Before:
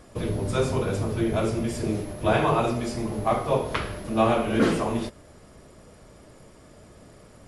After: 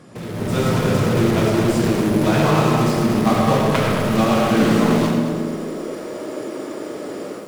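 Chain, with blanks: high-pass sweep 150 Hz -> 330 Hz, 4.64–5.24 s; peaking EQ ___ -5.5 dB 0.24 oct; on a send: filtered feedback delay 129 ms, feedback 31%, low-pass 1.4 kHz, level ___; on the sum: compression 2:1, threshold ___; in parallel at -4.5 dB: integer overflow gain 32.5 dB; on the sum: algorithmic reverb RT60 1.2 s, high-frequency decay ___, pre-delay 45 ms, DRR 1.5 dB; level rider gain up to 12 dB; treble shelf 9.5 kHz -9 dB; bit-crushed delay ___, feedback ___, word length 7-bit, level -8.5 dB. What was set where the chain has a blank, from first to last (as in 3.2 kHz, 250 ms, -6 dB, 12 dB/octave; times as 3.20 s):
660 Hz, -12 dB, -36 dBFS, 0.25×, 221 ms, 35%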